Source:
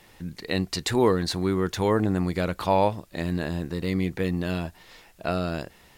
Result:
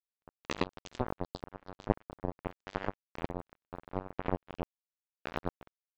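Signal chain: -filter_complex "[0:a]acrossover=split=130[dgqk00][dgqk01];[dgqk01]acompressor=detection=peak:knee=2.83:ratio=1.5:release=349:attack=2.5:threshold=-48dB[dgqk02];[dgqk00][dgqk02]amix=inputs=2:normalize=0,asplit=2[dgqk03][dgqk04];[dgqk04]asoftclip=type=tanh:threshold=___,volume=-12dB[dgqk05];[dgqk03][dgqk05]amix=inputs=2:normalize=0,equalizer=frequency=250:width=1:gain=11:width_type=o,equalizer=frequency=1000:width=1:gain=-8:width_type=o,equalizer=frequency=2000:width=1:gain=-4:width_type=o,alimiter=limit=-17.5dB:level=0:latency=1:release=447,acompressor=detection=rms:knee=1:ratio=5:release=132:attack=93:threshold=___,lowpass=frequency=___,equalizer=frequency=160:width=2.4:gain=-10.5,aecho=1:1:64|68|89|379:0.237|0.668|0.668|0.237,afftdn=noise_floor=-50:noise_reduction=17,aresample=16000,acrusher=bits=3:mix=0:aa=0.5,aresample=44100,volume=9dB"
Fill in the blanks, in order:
-28.5dB, -36dB, 3500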